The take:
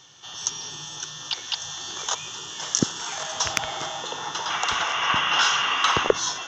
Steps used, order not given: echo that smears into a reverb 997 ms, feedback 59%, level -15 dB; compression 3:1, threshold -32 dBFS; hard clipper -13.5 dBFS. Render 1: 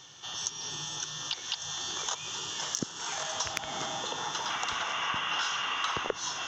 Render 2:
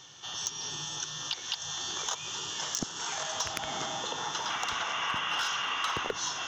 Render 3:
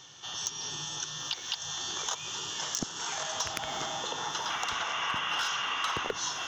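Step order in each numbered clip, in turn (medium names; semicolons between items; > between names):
echo that smears into a reverb > compression > hard clipper; echo that smears into a reverb > hard clipper > compression; hard clipper > echo that smears into a reverb > compression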